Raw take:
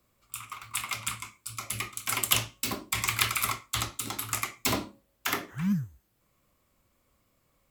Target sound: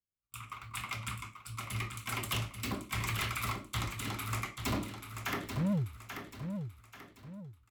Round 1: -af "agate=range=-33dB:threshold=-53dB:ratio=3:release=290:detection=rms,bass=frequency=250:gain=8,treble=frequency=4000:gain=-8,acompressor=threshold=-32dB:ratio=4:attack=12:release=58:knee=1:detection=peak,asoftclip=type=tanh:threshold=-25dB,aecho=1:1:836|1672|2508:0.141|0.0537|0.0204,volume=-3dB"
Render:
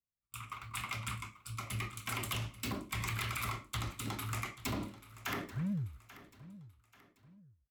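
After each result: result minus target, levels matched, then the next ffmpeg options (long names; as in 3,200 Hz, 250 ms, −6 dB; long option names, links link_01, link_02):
downward compressor: peak gain reduction +11.5 dB; echo-to-direct −9.5 dB
-af "agate=range=-33dB:threshold=-53dB:ratio=3:release=290:detection=rms,bass=frequency=250:gain=8,treble=frequency=4000:gain=-8,asoftclip=type=tanh:threshold=-25dB,aecho=1:1:836|1672|2508:0.141|0.0537|0.0204,volume=-3dB"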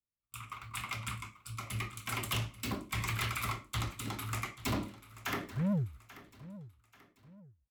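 echo-to-direct −9.5 dB
-af "agate=range=-33dB:threshold=-53dB:ratio=3:release=290:detection=rms,bass=frequency=250:gain=8,treble=frequency=4000:gain=-8,asoftclip=type=tanh:threshold=-25dB,aecho=1:1:836|1672|2508|3344:0.422|0.16|0.0609|0.0231,volume=-3dB"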